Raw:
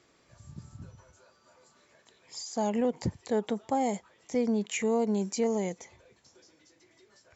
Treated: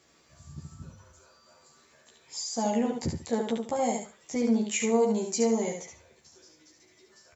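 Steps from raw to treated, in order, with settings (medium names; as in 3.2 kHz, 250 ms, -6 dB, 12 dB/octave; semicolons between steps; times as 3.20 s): treble shelf 6.3 kHz +9.5 dB; doubling 13 ms -2.5 dB; feedback delay 71 ms, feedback 23%, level -5 dB; trim -2 dB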